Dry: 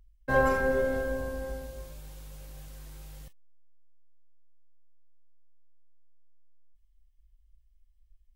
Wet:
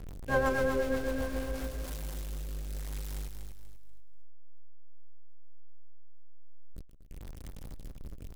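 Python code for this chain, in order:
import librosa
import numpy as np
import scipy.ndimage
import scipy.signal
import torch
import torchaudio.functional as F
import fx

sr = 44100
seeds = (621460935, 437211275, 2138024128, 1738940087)

p1 = x + 0.5 * 10.0 ** (-31.5 / 20.0) * np.sign(x)
p2 = fx.rotary_switch(p1, sr, hz=8.0, then_hz=0.9, switch_at_s=1.05)
p3 = p2 + fx.echo_feedback(p2, sr, ms=242, feedback_pct=32, wet_db=-7.0, dry=0)
p4 = fx.end_taper(p3, sr, db_per_s=130.0)
y = p4 * 10.0 ** (-3.0 / 20.0)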